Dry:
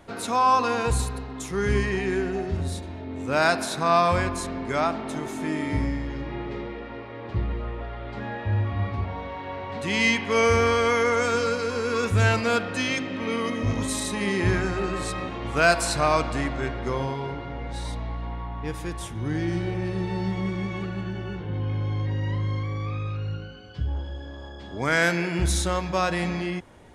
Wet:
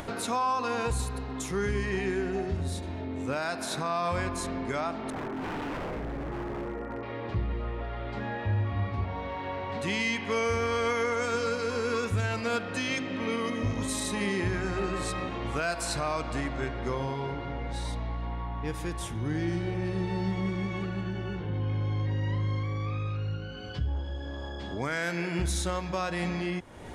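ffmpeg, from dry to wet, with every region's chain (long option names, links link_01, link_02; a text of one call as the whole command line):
ffmpeg -i in.wav -filter_complex "[0:a]asettb=1/sr,asplit=3[link_01][link_02][link_03];[link_01]atrim=end=5.104[link_04];[link_02]atrim=start=5.1:end=7.03,asetpts=PTS-STARTPTS,afade=type=in:duration=0.004:curve=qsin,afade=type=out:start_time=1.926:duration=0.004:curve=qsin,lowpass=frequency=1700:width=0.5412,lowpass=frequency=1700:width=1.3066,aeval=exprs='0.0335*(abs(mod(val(0)/0.0335+3,4)-2)-1)':channel_layout=same[link_05];[link_03]atrim=start=7.026[link_06];[link_04][link_05]acrossfade=duration=0.004:curve1=hsin:curve2=qsin[link_07];[link_07][link_06]acrossfade=duration=0.004:curve1=qsin:curve2=hsin,acompressor=mode=upward:threshold=-27dB:ratio=2.5,alimiter=limit=-17.5dB:level=0:latency=1:release=238,volume=-2.5dB" out.wav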